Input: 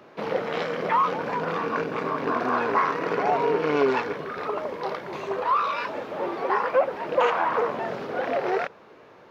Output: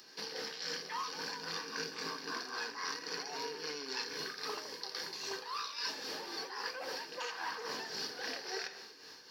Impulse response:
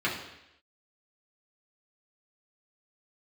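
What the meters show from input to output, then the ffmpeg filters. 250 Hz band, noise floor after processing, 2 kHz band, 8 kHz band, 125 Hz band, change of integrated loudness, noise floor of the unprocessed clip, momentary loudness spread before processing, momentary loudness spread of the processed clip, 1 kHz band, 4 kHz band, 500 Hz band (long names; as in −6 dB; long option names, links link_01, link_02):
−19.0 dB, −54 dBFS, −10.5 dB, can't be measured, −20.0 dB, −14.0 dB, −50 dBFS, 8 LU, 3 LU, −19.0 dB, +3.0 dB, −20.5 dB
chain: -filter_complex "[0:a]asplit=2[link_01][link_02];[1:a]atrim=start_sample=2205,asetrate=61740,aresample=44100[link_03];[link_02][link_03]afir=irnorm=-1:irlink=0,volume=-14dB[link_04];[link_01][link_04]amix=inputs=2:normalize=0,aexciter=amount=6.8:drive=7.9:freq=3400,superequalizer=8b=0.447:11b=2.82:12b=2:14b=3.16,areverse,acompressor=threshold=-27dB:ratio=10,areverse,highpass=frequency=120:poles=1,bandreject=frequency=60:width_type=h:width=6,bandreject=frequency=120:width_type=h:width=6,bandreject=frequency=180:width_type=h:width=6,bandreject=frequency=240:width_type=h:width=6,bandreject=frequency=300:width_type=h:width=6,bandreject=frequency=360:width_type=h:width=6,tremolo=f=3.7:d=0.51,volume=-8dB"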